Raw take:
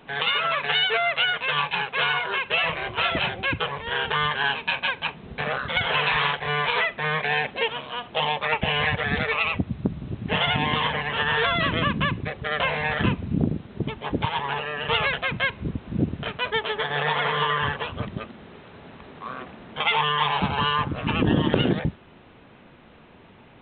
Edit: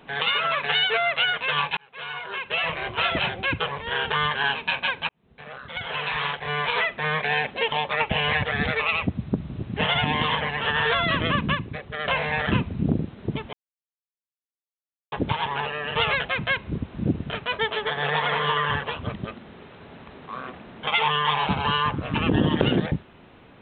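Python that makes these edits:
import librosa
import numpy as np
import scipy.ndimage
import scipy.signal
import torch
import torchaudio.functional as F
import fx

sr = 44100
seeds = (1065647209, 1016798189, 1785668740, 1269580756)

y = fx.edit(x, sr, fx.fade_in_span(start_s=1.77, length_s=1.09),
    fx.fade_in_span(start_s=5.09, length_s=1.84),
    fx.cut(start_s=7.72, length_s=0.52),
    fx.clip_gain(start_s=12.07, length_s=0.5, db=-4.0),
    fx.insert_silence(at_s=14.05, length_s=1.59), tone=tone)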